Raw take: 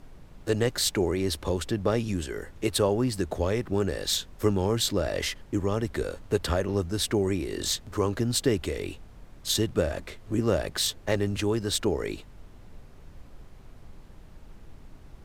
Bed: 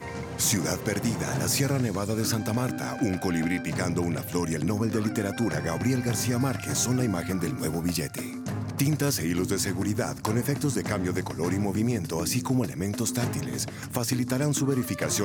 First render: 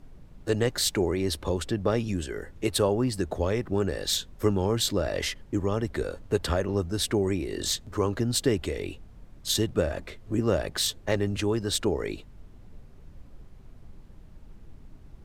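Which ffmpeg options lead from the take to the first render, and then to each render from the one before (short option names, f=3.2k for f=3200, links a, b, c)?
-af "afftdn=nr=6:nf=-50"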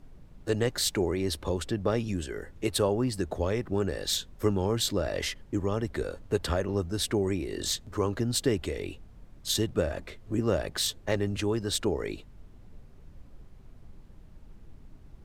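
-af "volume=-2dB"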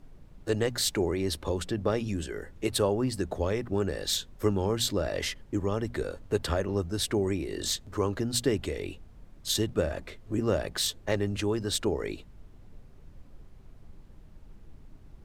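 -af "bandreject=f=60:t=h:w=6,bandreject=f=120:t=h:w=6,bandreject=f=180:t=h:w=6,bandreject=f=240:t=h:w=6"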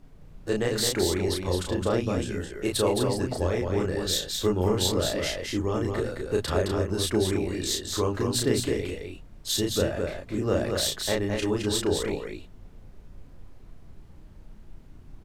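-filter_complex "[0:a]asplit=2[a][b];[b]adelay=33,volume=-2.5dB[c];[a][c]amix=inputs=2:normalize=0,aecho=1:1:215:0.596"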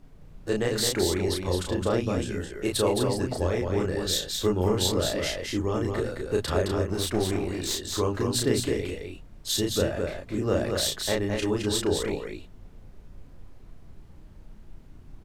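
-filter_complex "[0:a]asettb=1/sr,asplit=3[a][b][c];[a]atrim=end=6.874[d];[b]atrim=start=6.87:end=7.98,asetpts=PTS-STARTPTS,afade=t=in:d=0.004:c=qsin,afade=t=out:st=1.106:d=0.004:c=qsin,aeval=exprs='clip(val(0),-1,0.0376)':c=same[e];[c]atrim=start=7.976[f];[d][e]acrossfade=d=0.004:c1=hsin:c2=qsin[g];[g][f]acrossfade=d=0.004:c1=qsin:c2=hsin"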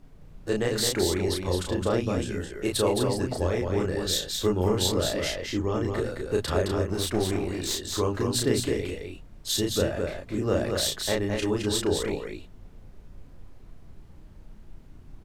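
-filter_complex "[0:a]asettb=1/sr,asplit=3[a][b][c];[a]atrim=end=5.354[d];[b]atrim=start=5.35:end=5.92,asetpts=PTS-STARTPTS,afade=t=in:d=0.004:c=qsin,afade=t=out:st=0.566:d=0.004:c=qsin,equalizer=f=10k:w=1.9:g=-10[e];[c]atrim=start=5.916[f];[d][e]acrossfade=d=0.004:c1=hsin:c2=qsin[g];[g][f]acrossfade=d=0.004:c1=qsin:c2=hsin"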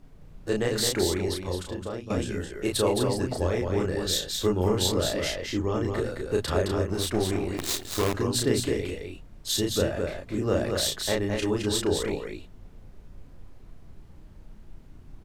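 -filter_complex "[0:a]asettb=1/sr,asplit=3[a][b][c];[a]atrim=end=7.574[d];[b]atrim=start=7.57:end=8.14,asetpts=PTS-STARTPTS,afade=t=in:d=0.004:c=qsin,afade=t=out:st=0.566:d=0.004:c=qsin,acrusher=bits=5:dc=4:mix=0:aa=0.000001[e];[c]atrim=start=8.136[f];[d][e]acrossfade=d=0.004:c1=hsin:c2=qsin[g];[g][f]acrossfade=d=0.004:c1=qsin:c2=hsin,asplit=2[h][i];[h]atrim=end=2.1,asetpts=PTS-STARTPTS,afade=t=out:st=1.02:d=1.08:silence=0.211349[j];[i]atrim=start=2.1,asetpts=PTS-STARTPTS,afade=t=in:d=0.004:c=hsin:silence=0.211349[k];[j][k]concat=n=2:v=0:a=1"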